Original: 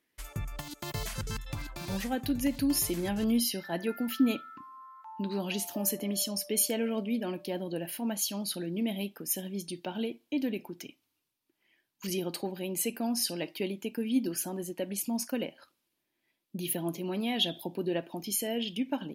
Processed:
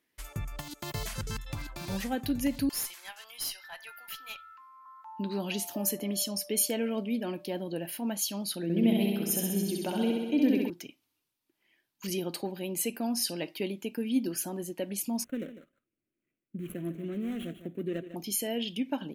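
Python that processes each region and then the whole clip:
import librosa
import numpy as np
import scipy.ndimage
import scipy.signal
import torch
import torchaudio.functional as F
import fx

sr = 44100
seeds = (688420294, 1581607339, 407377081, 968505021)

y = fx.chain(x, sr, fx.highpass(hz=950.0, slope=24),
    fx.tube_stage(drive_db=26.0, bias=0.6), at=(2.69, 4.86))
y = fx.chain(y, sr, fx.peak_eq(hz=260.0, db=4.0, octaves=2.7),
    fx.room_flutter(wall_m=11.2, rt60_s=1.3), at=(8.63, 10.7))
y = fx.chain(y, sr, fx.median_filter(points=25),
    fx.fixed_phaser(hz=2100.0, stages=4),
    fx.echo_single(ms=150, db=-12.5), at=(15.24, 18.16))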